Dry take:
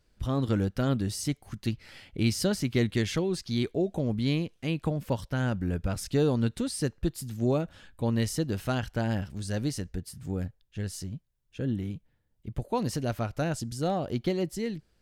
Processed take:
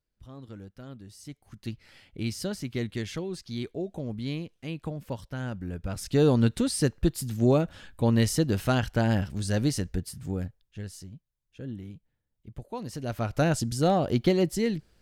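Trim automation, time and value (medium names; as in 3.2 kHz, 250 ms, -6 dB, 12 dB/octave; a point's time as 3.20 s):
1.06 s -17 dB
1.69 s -5.5 dB
5.77 s -5.5 dB
6.28 s +4.5 dB
10.00 s +4.5 dB
11.12 s -7.5 dB
12.88 s -7.5 dB
13.39 s +5.5 dB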